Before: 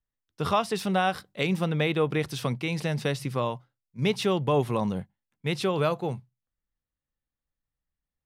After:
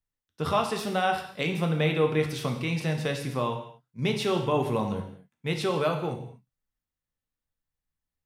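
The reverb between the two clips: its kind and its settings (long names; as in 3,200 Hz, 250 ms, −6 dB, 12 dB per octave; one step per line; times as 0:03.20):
reverb whose tail is shaped and stops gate 270 ms falling, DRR 3 dB
level −2 dB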